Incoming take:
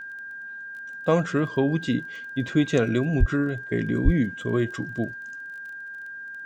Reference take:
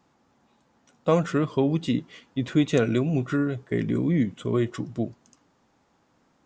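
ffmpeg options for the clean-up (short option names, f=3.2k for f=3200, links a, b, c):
-filter_complex "[0:a]adeclick=t=4,bandreject=f=1.6k:w=30,asplit=3[a][b][c];[a]afade=t=out:st=3.19:d=0.02[d];[b]highpass=f=140:w=0.5412,highpass=f=140:w=1.3066,afade=t=in:st=3.19:d=0.02,afade=t=out:st=3.31:d=0.02[e];[c]afade=t=in:st=3.31:d=0.02[f];[d][e][f]amix=inputs=3:normalize=0,asplit=3[g][h][i];[g]afade=t=out:st=4.04:d=0.02[j];[h]highpass=f=140:w=0.5412,highpass=f=140:w=1.3066,afade=t=in:st=4.04:d=0.02,afade=t=out:st=4.16:d=0.02[k];[i]afade=t=in:st=4.16:d=0.02[l];[j][k][l]amix=inputs=3:normalize=0"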